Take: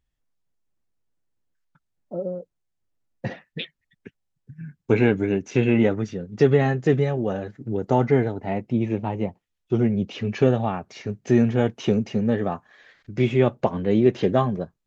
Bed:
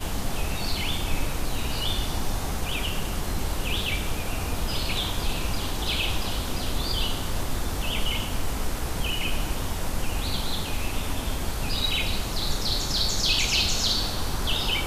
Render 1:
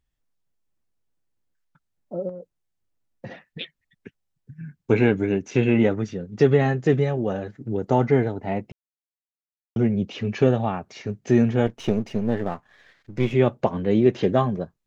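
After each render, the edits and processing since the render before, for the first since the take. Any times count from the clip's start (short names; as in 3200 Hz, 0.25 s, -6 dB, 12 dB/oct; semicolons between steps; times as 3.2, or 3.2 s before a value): 2.29–3.61 compressor, threshold -32 dBFS; 8.72–9.76 mute; 11.66–13.34 half-wave gain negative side -7 dB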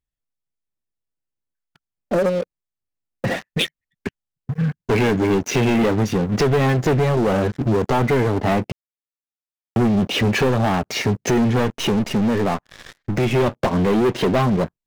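compressor 2.5:1, threshold -29 dBFS, peak gain reduction 12 dB; sample leveller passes 5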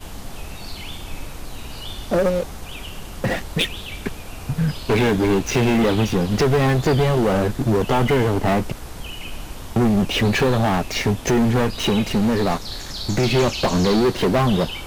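add bed -5.5 dB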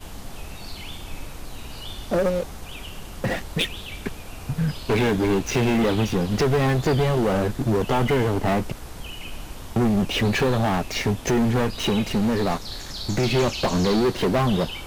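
gain -3 dB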